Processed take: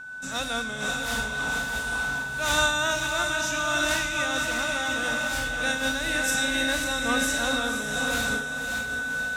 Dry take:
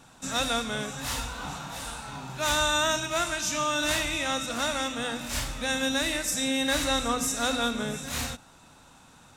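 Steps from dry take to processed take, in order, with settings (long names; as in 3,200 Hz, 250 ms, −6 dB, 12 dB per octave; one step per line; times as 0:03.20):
steady tone 1,500 Hz −33 dBFS
feedback delay with all-pass diffusion 558 ms, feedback 53%, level −3.5 dB
amplitude modulation by smooth noise, depth 60%
level +2 dB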